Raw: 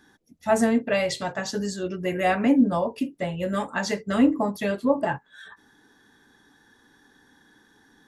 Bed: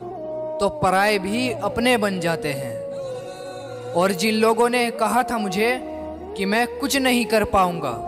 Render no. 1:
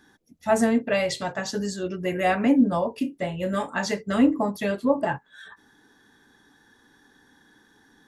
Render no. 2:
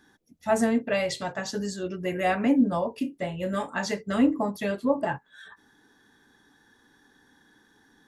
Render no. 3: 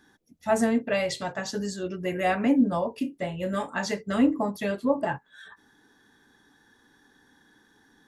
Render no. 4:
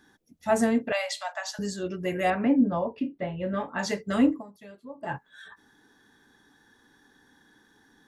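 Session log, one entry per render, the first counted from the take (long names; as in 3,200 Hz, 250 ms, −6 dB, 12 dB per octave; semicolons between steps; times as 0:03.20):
0:02.97–0:03.86: double-tracking delay 32 ms −12 dB
level −2.5 dB
no processing that can be heard
0:00.92–0:01.59: Butterworth high-pass 590 Hz 96 dB per octave; 0:02.30–0:03.79: high-frequency loss of the air 300 metres; 0:04.29–0:05.15: duck −18.5 dB, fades 0.14 s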